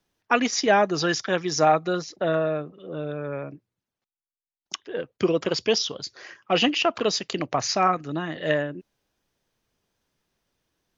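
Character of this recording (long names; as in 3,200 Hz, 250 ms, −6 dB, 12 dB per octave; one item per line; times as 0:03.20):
background noise floor −95 dBFS
spectral slope −3.5 dB per octave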